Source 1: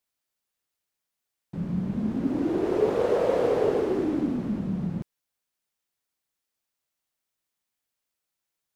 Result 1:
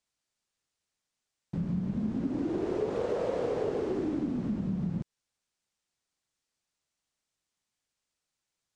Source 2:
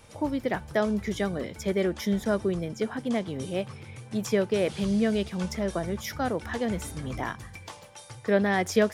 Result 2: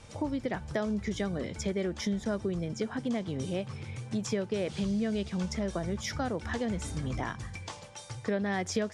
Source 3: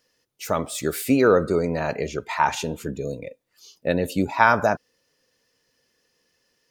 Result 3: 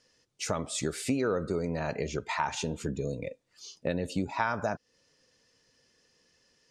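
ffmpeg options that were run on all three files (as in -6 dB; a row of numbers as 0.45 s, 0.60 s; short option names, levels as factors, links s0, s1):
-af "lowpass=f=8500:w=0.5412,lowpass=f=8500:w=1.3066,bass=f=250:g=4,treble=f=4000:g=3,acompressor=threshold=0.0316:ratio=3"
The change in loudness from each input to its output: -6.0 LU, -5.0 LU, -9.5 LU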